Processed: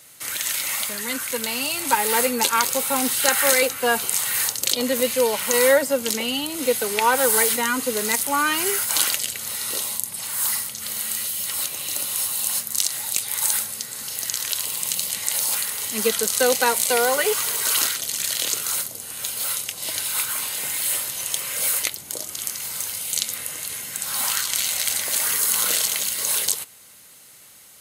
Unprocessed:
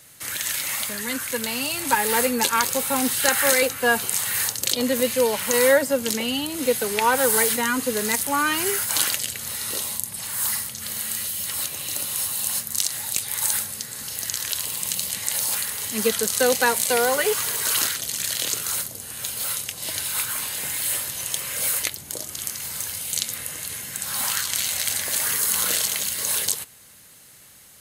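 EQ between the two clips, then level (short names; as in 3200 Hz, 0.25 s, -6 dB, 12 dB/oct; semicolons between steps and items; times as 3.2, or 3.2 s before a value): low shelf 170 Hz -10 dB; notch 1700 Hz, Q 13; +1.5 dB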